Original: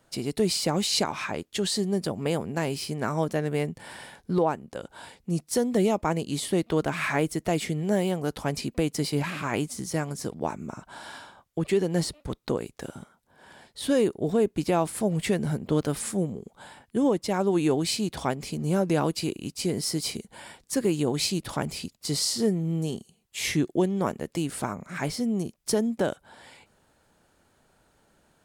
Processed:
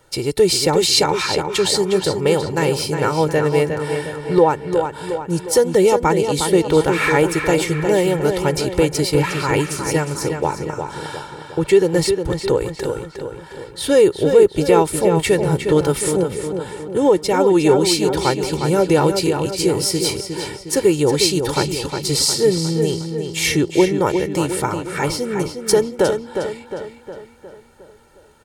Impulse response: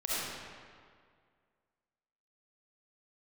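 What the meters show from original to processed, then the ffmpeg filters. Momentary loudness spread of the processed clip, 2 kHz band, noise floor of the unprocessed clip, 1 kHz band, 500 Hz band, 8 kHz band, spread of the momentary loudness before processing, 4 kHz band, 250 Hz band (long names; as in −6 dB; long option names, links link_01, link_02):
12 LU, +10.5 dB, −66 dBFS, +11.0 dB, +12.5 dB, +10.0 dB, 14 LU, +10.0 dB, +7.0 dB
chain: -filter_complex "[0:a]aecho=1:1:2.2:0.71,asplit=2[link_01][link_02];[link_02]adelay=359,lowpass=frequency=4800:poles=1,volume=-6.5dB,asplit=2[link_03][link_04];[link_04]adelay=359,lowpass=frequency=4800:poles=1,volume=0.53,asplit=2[link_05][link_06];[link_06]adelay=359,lowpass=frequency=4800:poles=1,volume=0.53,asplit=2[link_07][link_08];[link_08]adelay=359,lowpass=frequency=4800:poles=1,volume=0.53,asplit=2[link_09][link_10];[link_10]adelay=359,lowpass=frequency=4800:poles=1,volume=0.53,asplit=2[link_11][link_12];[link_12]adelay=359,lowpass=frequency=4800:poles=1,volume=0.53,asplit=2[link_13][link_14];[link_14]adelay=359,lowpass=frequency=4800:poles=1,volume=0.53[link_15];[link_01][link_03][link_05][link_07][link_09][link_11][link_13][link_15]amix=inputs=8:normalize=0,volume=8dB"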